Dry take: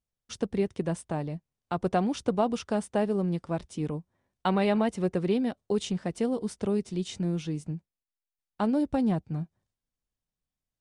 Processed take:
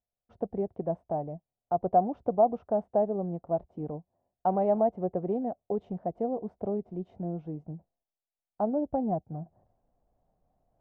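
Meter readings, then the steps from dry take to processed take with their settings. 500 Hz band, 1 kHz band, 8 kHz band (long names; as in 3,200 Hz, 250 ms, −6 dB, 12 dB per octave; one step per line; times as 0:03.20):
+1.5 dB, +3.5 dB, below −35 dB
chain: reversed playback
upward compression, threshold −47 dBFS
reversed playback
low-pass with resonance 700 Hz, resonance Q 4.9
level −6.5 dB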